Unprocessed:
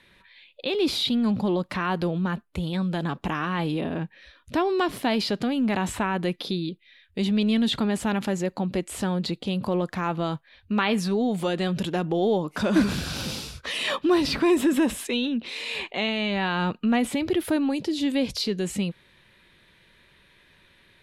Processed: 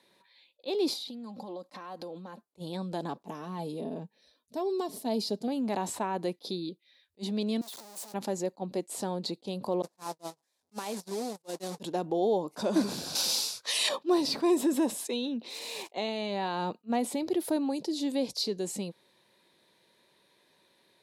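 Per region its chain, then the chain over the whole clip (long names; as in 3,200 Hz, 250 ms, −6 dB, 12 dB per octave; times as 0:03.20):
0:00.93–0:02.42: low-shelf EQ 220 Hz −6 dB + comb filter 3.8 ms, depth 50% + downward compressor 12 to 1, threshold −31 dBFS
0:03.26–0:05.48: parametric band 1,600 Hz −10.5 dB 2.7 octaves + comb filter 4.6 ms, depth 52%
0:07.61–0:08.14: sign of each sample alone + downward expander −18 dBFS + high-pass filter 690 Hz 6 dB per octave
0:09.82–0:11.80: linear delta modulator 64 kbit/s, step −23.5 dBFS + noise gate −25 dBFS, range −43 dB + downward compressor 4 to 1, threshold −26 dBFS
0:13.15–0:13.89: tilt shelving filter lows −10 dB, about 640 Hz + one half of a high-frequency compander decoder only
0:15.50–0:15.93: one scale factor per block 3 bits + low-pass filter 10,000 Hz
whole clip: Bessel high-pass filter 360 Hz, order 2; flat-topped bell 2,000 Hz −11.5 dB; level that may rise only so fast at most 550 dB per second; level −1.5 dB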